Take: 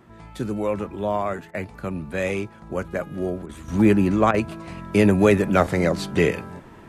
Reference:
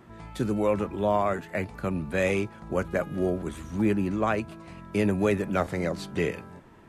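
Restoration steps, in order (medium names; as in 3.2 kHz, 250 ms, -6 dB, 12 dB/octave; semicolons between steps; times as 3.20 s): interpolate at 1.51/3.46/4.31 s, 30 ms; gain correction -8 dB, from 3.68 s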